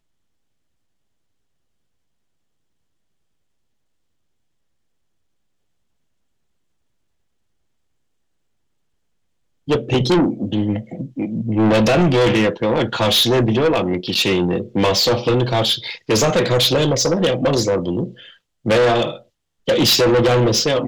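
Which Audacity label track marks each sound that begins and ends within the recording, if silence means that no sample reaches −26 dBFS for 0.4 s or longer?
9.680000	18.080000	sound
18.660000	19.160000	sound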